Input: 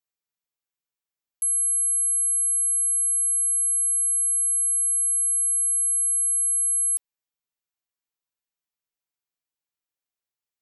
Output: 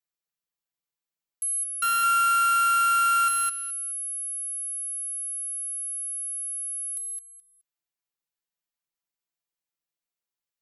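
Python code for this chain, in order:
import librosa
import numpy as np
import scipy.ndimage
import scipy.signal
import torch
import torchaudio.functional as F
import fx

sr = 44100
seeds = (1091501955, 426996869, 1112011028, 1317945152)

y = fx.sample_sort(x, sr, block=32, at=(1.82, 3.28))
y = y + 0.59 * np.pad(y, (int(5.9 * sr / 1000.0), 0))[:len(y)]
y = fx.echo_feedback(y, sr, ms=212, feedback_pct=18, wet_db=-5)
y = F.gain(torch.from_numpy(y), -4.0).numpy()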